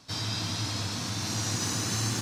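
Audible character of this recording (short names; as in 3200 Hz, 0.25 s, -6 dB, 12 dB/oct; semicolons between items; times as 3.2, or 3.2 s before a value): noise floor -35 dBFS; spectral tilt -3.0 dB/oct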